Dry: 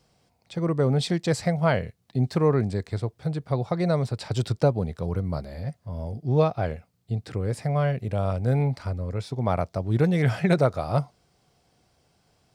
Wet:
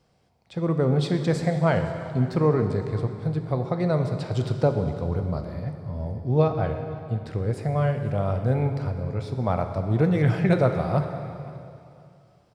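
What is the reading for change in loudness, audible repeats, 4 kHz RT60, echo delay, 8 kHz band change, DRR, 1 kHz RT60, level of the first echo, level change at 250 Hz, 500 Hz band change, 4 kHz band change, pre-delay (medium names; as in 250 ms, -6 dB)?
+1.0 dB, 2, 2.5 s, 512 ms, no reading, 6.0 dB, 2.6 s, -20.0 dB, +1.0 dB, +1.0 dB, -3.5 dB, 5 ms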